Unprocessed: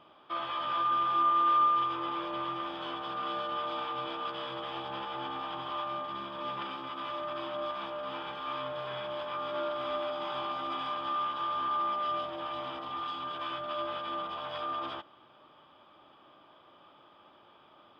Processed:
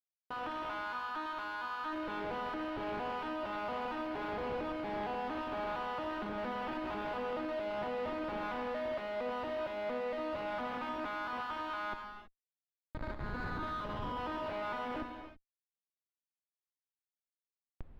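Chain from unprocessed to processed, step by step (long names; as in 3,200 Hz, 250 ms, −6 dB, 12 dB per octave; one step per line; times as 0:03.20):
vocoder with an arpeggio as carrier minor triad, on G#3, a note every 230 ms
brickwall limiter −28 dBFS, peak gain reduction 10.5 dB
0:11.92–0:14.18: resonant band-pass 3,300 Hz → 980 Hz, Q 8.2
comparator with hysteresis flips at −46 dBFS
high-frequency loss of the air 380 metres
reverb whose tail is shaped and stops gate 350 ms flat, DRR 4 dB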